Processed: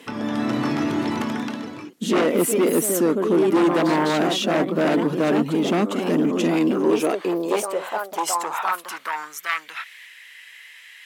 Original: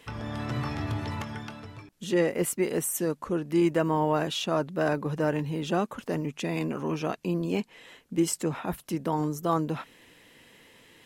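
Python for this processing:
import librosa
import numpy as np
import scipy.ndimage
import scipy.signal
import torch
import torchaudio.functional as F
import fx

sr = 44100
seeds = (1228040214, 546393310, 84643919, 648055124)

y = fx.echo_pitch(x, sr, ms=216, semitones=2, count=2, db_per_echo=-6.0)
y = fx.fold_sine(y, sr, drive_db=11, ceiling_db=-10.0)
y = fx.filter_sweep_highpass(y, sr, from_hz=250.0, to_hz=1900.0, start_s=6.48, end_s=9.7, q=2.5)
y = y * 10.0 ** (-7.5 / 20.0)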